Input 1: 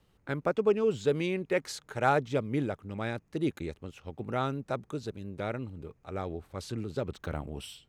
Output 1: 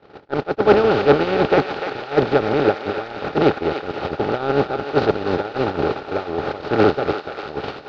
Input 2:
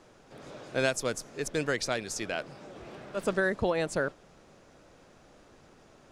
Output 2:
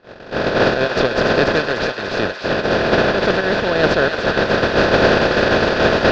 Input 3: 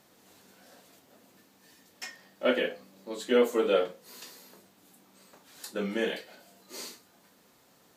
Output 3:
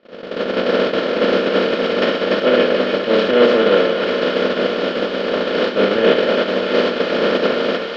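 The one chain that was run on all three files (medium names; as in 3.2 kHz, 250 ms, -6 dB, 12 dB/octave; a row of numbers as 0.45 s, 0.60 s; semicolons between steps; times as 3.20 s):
spectral levelling over time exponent 0.2; in parallel at -6 dB: saturation -16.5 dBFS; on the sum: level rider gain up to 7 dB; dynamic bell 2.2 kHz, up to -5 dB, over -37 dBFS, Q 2.9; word length cut 6-bit, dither triangular; steep low-pass 4.5 kHz 36 dB/octave; peak limiter -12.5 dBFS; gate -18 dBFS, range -50 dB; thinning echo 294 ms, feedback 74%, high-pass 840 Hz, level -6 dB; peak normalisation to -2 dBFS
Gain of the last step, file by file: +13.5 dB, +17.0 dB, +12.0 dB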